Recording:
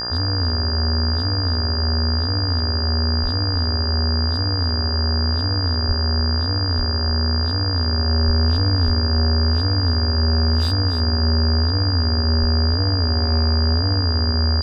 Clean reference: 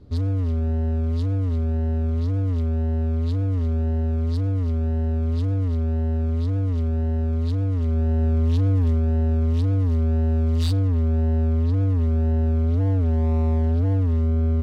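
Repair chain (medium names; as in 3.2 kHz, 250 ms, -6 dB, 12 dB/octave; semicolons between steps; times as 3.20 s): de-hum 59.9 Hz, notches 30; band-stop 4.8 kHz, Q 30; de-plosive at 3.22/5.87/6.77/8.26/8.85/12.40 s; inverse comb 287 ms -10.5 dB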